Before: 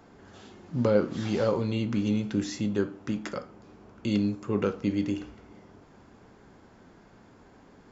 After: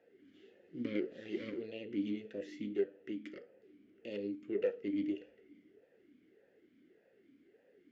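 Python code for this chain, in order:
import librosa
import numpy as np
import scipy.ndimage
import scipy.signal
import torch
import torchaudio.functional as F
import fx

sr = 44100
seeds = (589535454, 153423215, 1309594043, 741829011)

y = fx.cheby_harmonics(x, sr, harmonics=(3, 8), levels_db=(-21, -21), full_scale_db=-10.0)
y = fx.vowel_sweep(y, sr, vowels='e-i', hz=1.7)
y = y * 10.0 ** (1.5 / 20.0)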